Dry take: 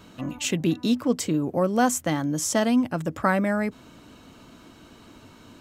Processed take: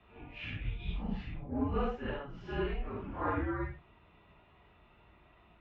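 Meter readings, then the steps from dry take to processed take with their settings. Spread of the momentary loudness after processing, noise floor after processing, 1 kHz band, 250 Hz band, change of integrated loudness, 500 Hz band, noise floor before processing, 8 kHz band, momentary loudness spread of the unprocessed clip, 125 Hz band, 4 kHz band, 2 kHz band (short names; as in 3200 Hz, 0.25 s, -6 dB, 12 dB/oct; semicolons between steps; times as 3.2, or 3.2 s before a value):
9 LU, -63 dBFS, -12.0 dB, -15.5 dB, -13.0 dB, -12.5 dB, -50 dBFS, under -40 dB, 6 LU, -8.5 dB, -16.0 dB, -12.5 dB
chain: phase scrambler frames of 0.2 s; mistuned SSB -280 Hz 200–3300 Hz; HPF 41 Hz; gain -9 dB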